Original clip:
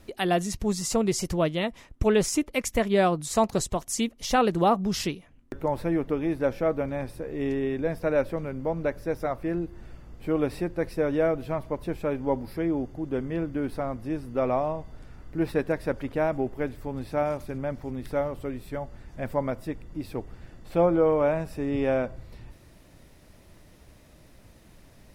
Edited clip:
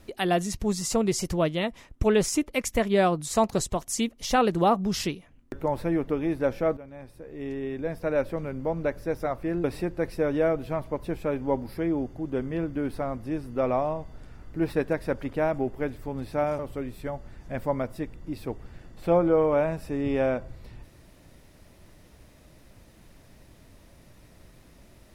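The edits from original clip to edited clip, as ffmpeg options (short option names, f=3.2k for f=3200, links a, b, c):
-filter_complex "[0:a]asplit=4[a][b][c][d];[a]atrim=end=6.77,asetpts=PTS-STARTPTS,afade=t=out:st=6.766:d=0.004:c=hsin:silence=0.149624[e];[b]atrim=start=6.77:end=9.642,asetpts=PTS-STARTPTS,afade=t=in:d=1.7:silence=0.149624[f];[c]atrim=start=10.428:end=17.382[g];[d]atrim=start=18.268[h];[e][f]concat=n=2:v=0:a=1[i];[i][g]acrossfade=d=0.004:c1=hsin:c2=hsin[j];[j][h]acrossfade=d=0.004:c1=hsin:c2=hsin"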